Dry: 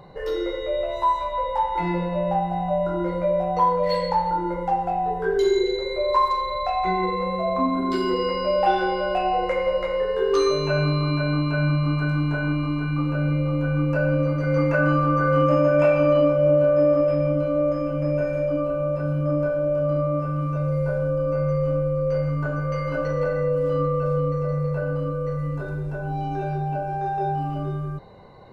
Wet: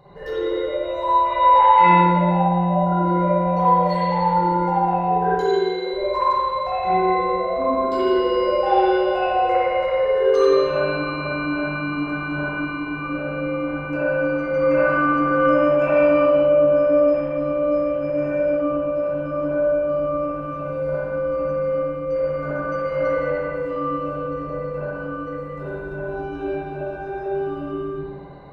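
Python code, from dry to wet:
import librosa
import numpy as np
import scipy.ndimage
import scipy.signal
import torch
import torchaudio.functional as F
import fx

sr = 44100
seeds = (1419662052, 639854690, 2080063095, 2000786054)

y = fx.peak_eq(x, sr, hz=2300.0, db=12.0, octaves=2.4, at=(1.25, 1.95))
y = fx.highpass(y, sr, hz=500.0, slope=12, at=(5.29, 5.93))
y = fx.rev_spring(y, sr, rt60_s=1.7, pass_ms=(51, 56), chirp_ms=45, drr_db=-9.5)
y = F.gain(torch.from_numpy(y), -6.5).numpy()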